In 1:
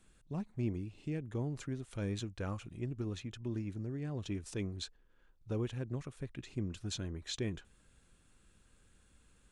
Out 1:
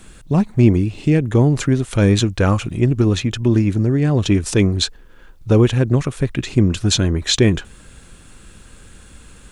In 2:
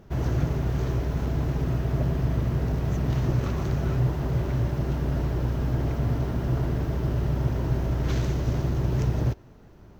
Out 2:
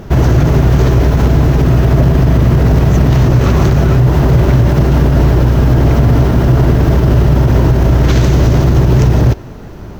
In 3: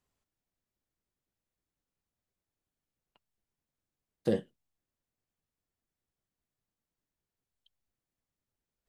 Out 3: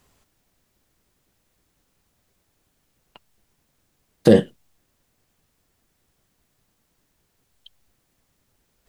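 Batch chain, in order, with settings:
brickwall limiter −22.5 dBFS
normalise the peak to −1.5 dBFS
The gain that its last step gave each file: +23.5, +21.0, +21.0 decibels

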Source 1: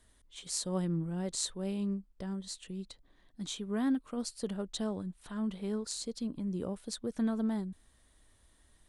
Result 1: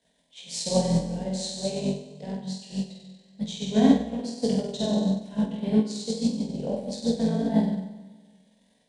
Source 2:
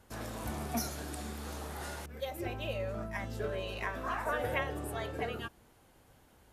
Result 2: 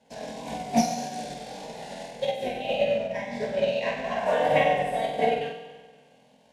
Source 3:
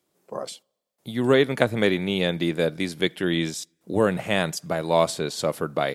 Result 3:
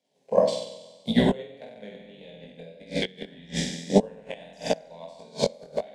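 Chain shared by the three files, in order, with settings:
sub-octave generator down 2 octaves, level +1 dB
high-frequency loss of the air 92 metres
flutter between parallel walls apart 8.1 metres, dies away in 1.5 s
transient designer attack +5 dB, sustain −6 dB
high-pass filter 200 Hz 12 dB per octave
gate with flip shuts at −12 dBFS, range −24 dB
phaser with its sweep stopped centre 340 Hz, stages 6
chorus effect 1.7 Hz, delay 17.5 ms, depth 5.8 ms
expander for the loud parts 1.5 to 1, over −47 dBFS
loudness normalisation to −27 LKFS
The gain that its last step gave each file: +16.0, +15.5, +14.0 decibels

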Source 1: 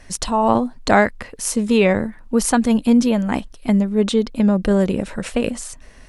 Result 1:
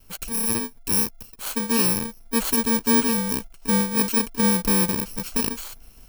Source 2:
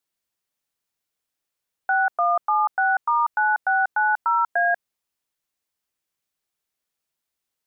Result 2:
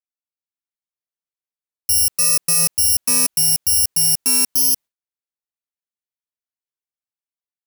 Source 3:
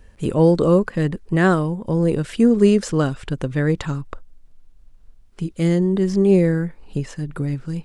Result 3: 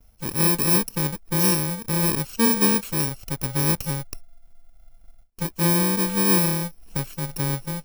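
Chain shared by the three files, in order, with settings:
samples in bit-reversed order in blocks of 64 samples
noise gate with hold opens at −40 dBFS
automatic gain control gain up to 6.5 dB
normalise the peak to −9 dBFS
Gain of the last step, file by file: −8.0, −2.0, −7.5 decibels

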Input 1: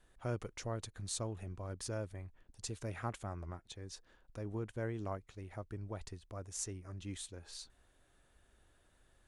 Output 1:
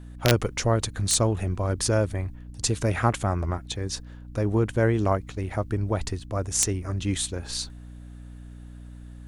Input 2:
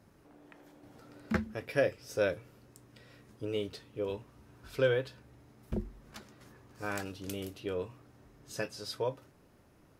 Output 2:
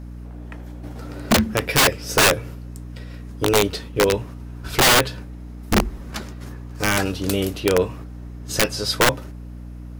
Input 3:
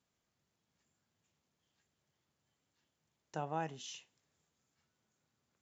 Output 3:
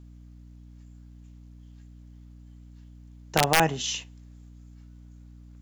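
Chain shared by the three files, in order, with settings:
noise gate −55 dBFS, range −6 dB
mains hum 60 Hz, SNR 15 dB
wrap-around overflow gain 26.5 dB
normalise the peak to −9 dBFS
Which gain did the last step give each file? +17.5, +17.5, +17.5 decibels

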